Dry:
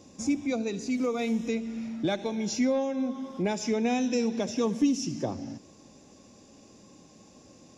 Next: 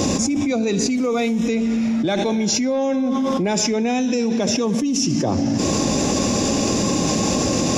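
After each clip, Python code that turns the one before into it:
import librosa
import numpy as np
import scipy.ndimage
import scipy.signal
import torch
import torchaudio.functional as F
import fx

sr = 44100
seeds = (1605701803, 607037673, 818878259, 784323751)

y = fx.env_flatten(x, sr, amount_pct=100)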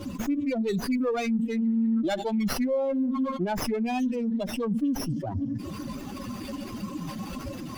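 y = fx.bin_expand(x, sr, power=3.0)
y = fx.running_max(y, sr, window=5)
y = F.gain(torch.from_numpy(y), -1.5).numpy()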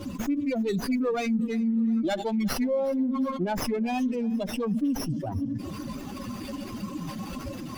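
y = fx.echo_feedback(x, sr, ms=364, feedback_pct=51, wet_db=-22.5)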